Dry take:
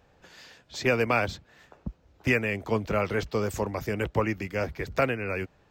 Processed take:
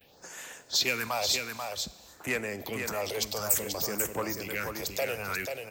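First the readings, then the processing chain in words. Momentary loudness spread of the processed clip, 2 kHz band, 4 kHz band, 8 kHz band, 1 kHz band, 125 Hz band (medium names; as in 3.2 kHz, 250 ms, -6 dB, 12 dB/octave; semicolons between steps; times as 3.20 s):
11 LU, -3.5 dB, +10.0 dB, +14.5 dB, -4.5 dB, -11.5 dB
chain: gate with hold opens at -55 dBFS; phase shifter stages 4, 0.55 Hz, lowest notch 220–4500 Hz; in parallel at 0 dB: compressor with a negative ratio -38 dBFS, ratio -1; on the sum: saturation -17.5 dBFS, distortion -18 dB; RIAA curve recording; on a send: delay 487 ms -5.5 dB; on the sum: Schroeder reverb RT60 1.4 s, combs from 31 ms, DRR 16.5 dB; trim -3 dB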